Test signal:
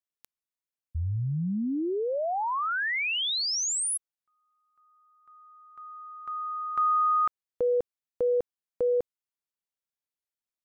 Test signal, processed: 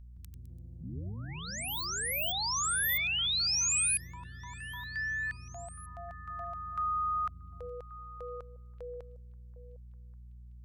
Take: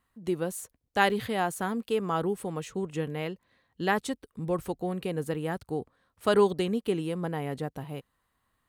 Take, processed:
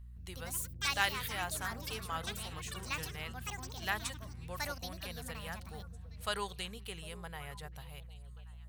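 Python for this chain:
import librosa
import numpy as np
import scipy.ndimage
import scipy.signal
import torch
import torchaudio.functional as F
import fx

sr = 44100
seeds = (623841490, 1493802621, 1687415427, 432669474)

p1 = fx.add_hum(x, sr, base_hz=60, snr_db=10)
p2 = fx.tone_stack(p1, sr, knobs='10-0-10')
p3 = fx.echo_pitch(p2, sr, ms=166, semitones=6, count=3, db_per_echo=-3.0)
y = p3 + fx.echo_stepped(p3, sr, ms=377, hz=180.0, octaves=1.4, feedback_pct=70, wet_db=-11, dry=0)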